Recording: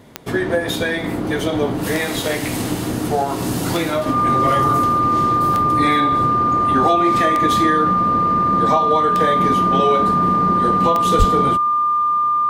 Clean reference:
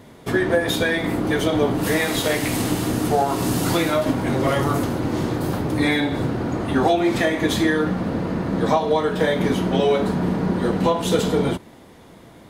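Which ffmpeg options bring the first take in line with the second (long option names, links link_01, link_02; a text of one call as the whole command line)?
ffmpeg -i in.wav -filter_complex "[0:a]adeclick=threshold=4,bandreject=frequency=1200:width=30,asplit=3[link_01][link_02][link_03];[link_01]afade=type=out:start_time=11.18:duration=0.02[link_04];[link_02]highpass=frequency=140:width=0.5412,highpass=frequency=140:width=1.3066,afade=type=in:start_time=11.18:duration=0.02,afade=type=out:start_time=11.3:duration=0.02[link_05];[link_03]afade=type=in:start_time=11.3:duration=0.02[link_06];[link_04][link_05][link_06]amix=inputs=3:normalize=0" out.wav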